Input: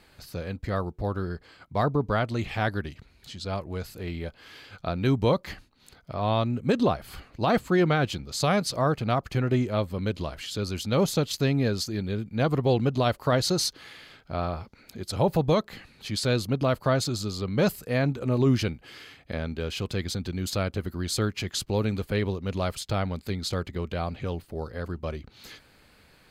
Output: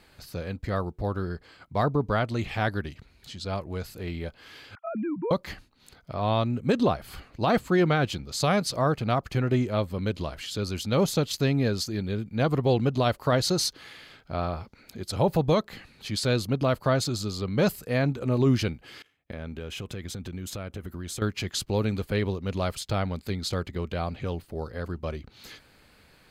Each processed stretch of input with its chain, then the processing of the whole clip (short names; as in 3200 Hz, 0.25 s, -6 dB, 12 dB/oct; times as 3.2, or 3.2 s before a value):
4.75–5.31 sine-wave speech + compressor, threshold -27 dBFS + LPF 1300 Hz
19.02–21.22 gate -45 dBFS, range -22 dB + bell 4500 Hz -10 dB 0.35 oct + compressor, threshold -32 dBFS
whole clip: dry